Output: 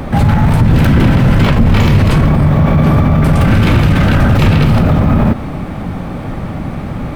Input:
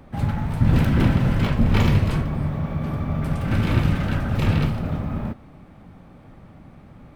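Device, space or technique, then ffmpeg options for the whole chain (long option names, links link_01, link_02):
loud club master: -af "acompressor=threshold=-20dB:ratio=2.5,asoftclip=type=hard:threshold=-15.5dB,alimiter=level_in=26dB:limit=-1dB:release=50:level=0:latency=1,volume=-1.5dB"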